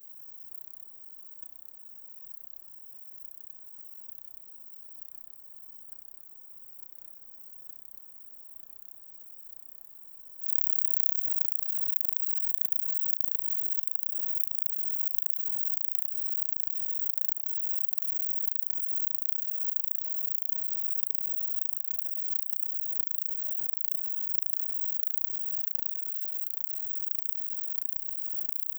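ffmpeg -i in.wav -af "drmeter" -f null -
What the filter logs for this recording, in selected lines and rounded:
Channel 1: DR: 17.0
Overall DR: 17.0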